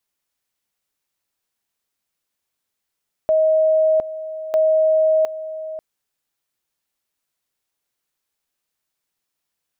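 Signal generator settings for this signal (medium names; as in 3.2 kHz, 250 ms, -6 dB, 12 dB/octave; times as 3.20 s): two-level tone 631 Hz -12.5 dBFS, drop 14 dB, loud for 0.71 s, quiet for 0.54 s, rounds 2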